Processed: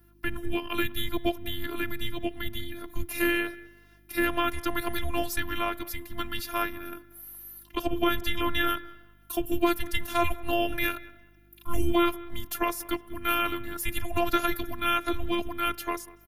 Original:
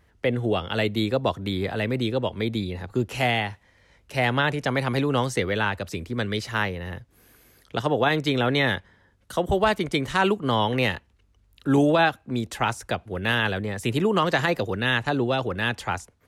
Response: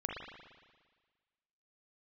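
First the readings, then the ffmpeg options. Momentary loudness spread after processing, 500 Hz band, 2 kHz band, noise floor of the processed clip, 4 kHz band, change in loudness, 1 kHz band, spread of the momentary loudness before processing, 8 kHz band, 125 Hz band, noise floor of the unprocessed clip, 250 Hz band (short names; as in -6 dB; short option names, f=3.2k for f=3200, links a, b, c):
11 LU, -7.5 dB, -5.5 dB, -57 dBFS, -4.5 dB, -5.0 dB, -4.0 dB, 9 LU, +1.5 dB, -13.0 dB, -62 dBFS, -4.5 dB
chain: -filter_complex "[0:a]afreqshift=-330,asplit=2[a][b];[1:a]atrim=start_sample=2205[c];[b][c]afir=irnorm=-1:irlink=0,volume=-22.5dB[d];[a][d]amix=inputs=2:normalize=0,afftfilt=real='hypot(re,im)*cos(PI*b)':imag='0':win_size=512:overlap=0.75,asplit=2[e][f];[f]adelay=191,lowpass=f=2.3k:p=1,volume=-19.5dB,asplit=2[g][h];[h]adelay=191,lowpass=f=2.3k:p=1,volume=0.31,asplit=2[i][j];[j]adelay=191,lowpass=f=2.3k:p=1,volume=0.31[k];[e][g][i][k]amix=inputs=4:normalize=0,aeval=exprs='val(0)+0.00112*(sin(2*PI*50*n/s)+sin(2*PI*2*50*n/s)/2+sin(2*PI*3*50*n/s)/3+sin(2*PI*4*50*n/s)/4+sin(2*PI*5*50*n/s)/5)':c=same,aexciter=amount=11.5:drive=6.8:freq=11k"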